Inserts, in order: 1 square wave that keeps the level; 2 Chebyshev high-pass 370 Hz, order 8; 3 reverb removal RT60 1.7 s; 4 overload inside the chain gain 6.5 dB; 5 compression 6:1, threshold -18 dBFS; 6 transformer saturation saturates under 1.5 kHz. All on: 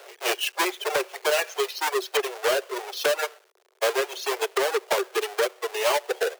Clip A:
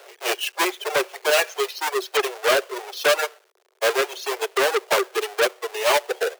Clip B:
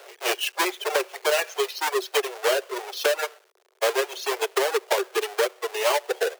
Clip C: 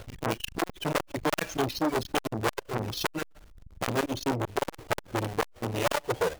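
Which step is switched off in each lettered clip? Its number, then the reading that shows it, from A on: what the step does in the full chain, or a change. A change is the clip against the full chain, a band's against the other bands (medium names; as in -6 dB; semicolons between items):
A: 5, mean gain reduction 2.5 dB; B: 4, distortion -21 dB; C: 2, 250 Hz band +14.0 dB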